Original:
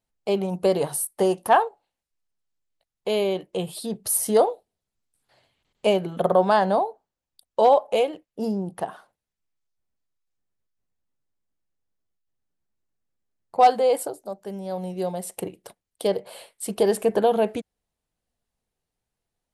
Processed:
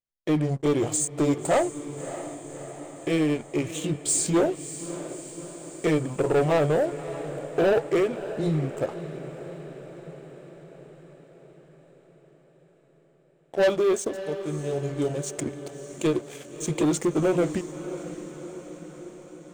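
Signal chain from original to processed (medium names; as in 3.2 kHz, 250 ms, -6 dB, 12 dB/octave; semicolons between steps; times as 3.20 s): rotating-head pitch shifter -4.5 st; waveshaping leveller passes 3; echo that smears into a reverb 608 ms, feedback 63%, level -12.5 dB; trim -8.5 dB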